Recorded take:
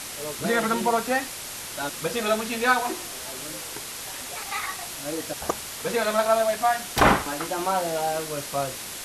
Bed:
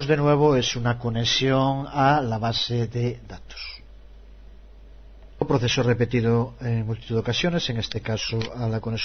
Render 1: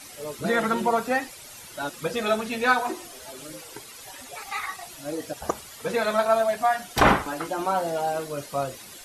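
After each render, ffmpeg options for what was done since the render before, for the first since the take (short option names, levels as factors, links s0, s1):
-af "afftdn=nr=12:nf=-36"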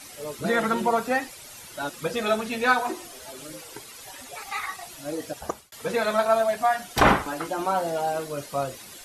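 -filter_complex "[0:a]asplit=2[s0][s1];[s0]atrim=end=5.72,asetpts=PTS-STARTPTS,afade=t=out:st=5.24:d=0.48:c=qsin[s2];[s1]atrim=start=5.72,asetpts=PTS-STARTPTS,afade=t=in:d=0.004:c=hsin[s3];[s2][s3]concat=n=2:v=0:a=1"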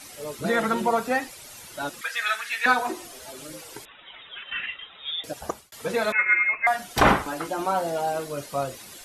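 -filter_complex "[0:a]asettb=1/sr,asplit=3[s0][s1][s2];[s0]atrim=end=2.014[s3];[s1]atrim=start=2.01:end=2.66,asetpts=PTS-STARTPTS,afade=t=in:d=0.004:c=qsin,afade=t=out:st=0.646:d=0.004:c=qsin,highpass=f=1700:t=q:w=3.7[s4];[s2]atrim=start=2.656[s5];[s3][s4]acrossfade=d=0.004:c1=hsin:c2=qsin[s6];[s6][s5]acrossfade=d=0.004:c1=qsin:c2=hsin,asettb=1/sr,asplit=3[s7][s8][s9];[s7]atrim=end=3.854[s10];[s8]atrim=start=3.85:end=5.24,asetpts=PTS-STARTPTS,afade=t=in:d=0.004:c=qsin,afade=t=out:st=1.386:d=0.004:c=qsin,lowpass=f=3300:t=q:w=0.5098,lowpass=f=3300:t=q:w=0.6013,lowpass=f=3300:t=q:w=0.9,lowpass=f=3300:t=q:w=2.563,afreqshift=-3900[s11];[s9]atrim=start=5.236[s12];[s10][s11]acrossfade=d=0.004:c1=hsin:c2=qsin[s13];[s13][s12]acrossfade=d=0.004:c1=qsin:c2=hsin,asettb=1/sr,asplit=3[s14][s15][s16];[s14]atrim=end=6.124[s17];[s15]atrim=start=6.12:end=6.67,asetpts=PTS-STARTPTS,afade=t=in:d=0.004:c=qsin,afade=t=out:st=0.546:d=0.004:c=qsin,lowpass=f=2400:t=q:w=0.5098,lowpass=f=2400:t=q:w=0.6013,lowpass=f=2400:t=q:w=0.9,lowpass=f=2400:t=q:w=2.563,afreqshift=-2800[s18];[s16]atrim=start=6.666[s19];[s17][s18]acrossfade=d=0.004:c1=hsin:c2=qsin[s20];[s20][s19]acrossfade=d=0.004:c1=qsin:c2=hsin"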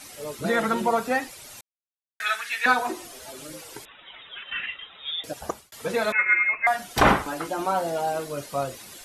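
-filter_complex "[0:a]asplit=3[s0][s1][s2];[s0]atrim=end=1.61,asetpts=PTS-STARTPTS,afade=t=out:st=1.606:d=0.004:c=hsin[s3];[s1]atrim=start=1.61:end=2.2,asetpts=PTS-STARTPTS,volume=0[s4];[s2]atrim=start=2.2,asetpts=PTS-STARTPTS,afade=t=in:d=0.004:c=hsin[s5];[s3][s4][s5]concat=n=3:v=0:a=1"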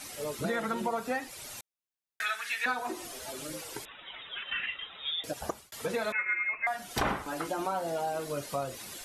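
-af "acompressor=threshold=0.0282:ratio=3"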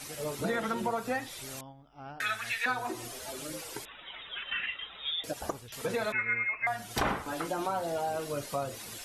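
-filter_complex "[1:a]volume=0.0447[s0];[0:a][s0]amix=inputs=2:normalize=0"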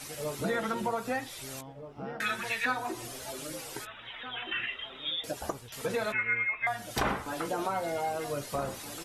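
-filter_complex "[0:a]asplit=2[s0][s1];[s1]adelay=15,volume=0.2[s2];[s0][s2]amix=inputs=2:normalize=0,asplit=2[s3][s4];[s4]adelay=1574,volume=0.355,highshelf=f=4000:g=-35.4[s5];[s3][s5]amix=inputs=2:normalize=0"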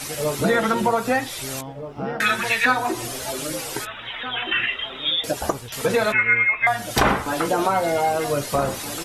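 -af "volume=3.76"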